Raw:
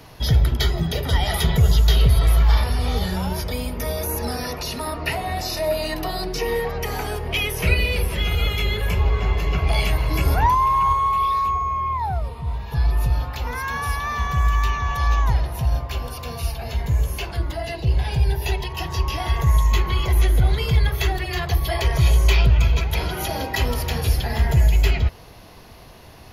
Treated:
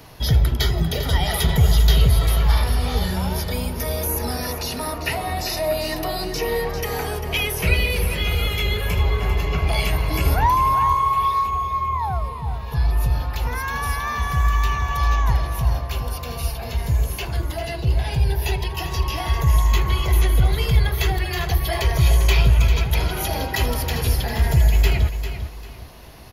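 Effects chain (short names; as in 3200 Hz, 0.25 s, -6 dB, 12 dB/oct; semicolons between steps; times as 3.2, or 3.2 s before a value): high shelf 11000 Hz +6 dB; feedback echo 0.397 s, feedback 28%, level -10 dB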